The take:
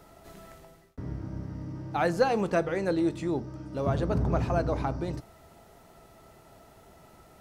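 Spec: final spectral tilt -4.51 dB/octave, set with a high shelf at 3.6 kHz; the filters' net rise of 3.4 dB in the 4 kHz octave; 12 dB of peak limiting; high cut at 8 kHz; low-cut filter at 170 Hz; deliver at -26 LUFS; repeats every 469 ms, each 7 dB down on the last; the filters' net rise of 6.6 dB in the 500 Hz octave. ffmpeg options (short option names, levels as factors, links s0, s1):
-af "highpass=170,lowpass=8000,equalizer=f=500:t=o:g=8,highshelf=f=3600:g=-7.5,equalizer=f=4000:t=o:g=8.5,alimiter=limit=0.141:level=0:latency=1,aecho=1:1:469|938|1407|1876|2345:0.447|0.201|0.0905|0.0407|0.0183,volume=1.19"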